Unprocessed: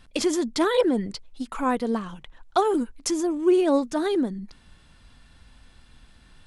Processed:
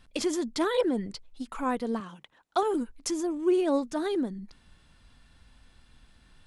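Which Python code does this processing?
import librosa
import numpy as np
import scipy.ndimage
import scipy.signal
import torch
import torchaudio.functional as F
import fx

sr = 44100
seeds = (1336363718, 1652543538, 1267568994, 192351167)

y = fx.highpass(x, sr, hz=170.0, slope=12, at=(2.0, 2.63))
y = y * 10.0 ** (-5.0 / 20.0)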